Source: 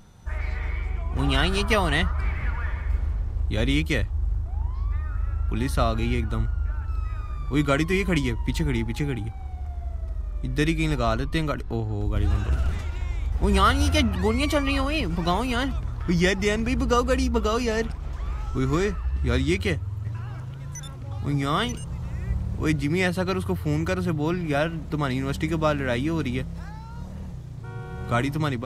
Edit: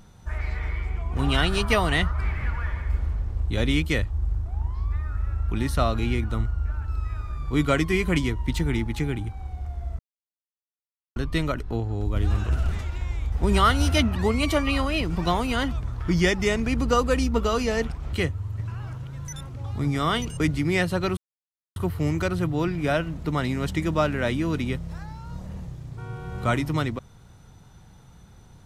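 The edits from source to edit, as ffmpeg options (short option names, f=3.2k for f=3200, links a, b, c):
-filter_complex "[0:a]asplit=6[a][b][c][d][e][f];[a]atrim=end=9.99,asetpts=PTS-STARTPTS,afade=t=out:st=9.986:d=0.004:c=hsin[g];[b]atrim=start=9.99:end=11.16,asetpts=PTS-STARTPTS,volume=0[h];[c]atrim=start=11.16:end=18.132,asetpts=PTS-STARTPTS,afade=t=in:d=0.004:c=hsin[i];[d]atrim=start=19.598:end=21.872[j];[e]atrim=start=22.648:end=23.42,asetpts=PTS-STARTPTS,afade=t=out:st=0.768:d=0.004:c=hsin,apad=pad_dur=0.59[k];[f]atrim=start=23.42,asetpts=PTS-STARTPTS,afade=t=in:d=0.004:c=hsin[l];[g][h][i]concat=n=3:v=0:a=1[m];[m][j]acrossfade=d=0.004:c1=hsin:c2=hsin[n];[k][l]concat=n=2:v=0:a=1[o];[n][o]acrossfade=d=0.004:c1=hsin:c2=hsin"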